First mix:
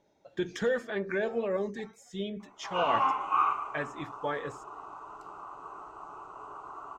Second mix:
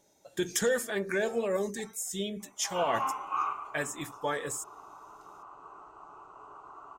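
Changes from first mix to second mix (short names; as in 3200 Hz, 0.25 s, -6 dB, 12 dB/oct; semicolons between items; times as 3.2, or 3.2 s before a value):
speech: remove air absorption 230 m; background -5.0 dB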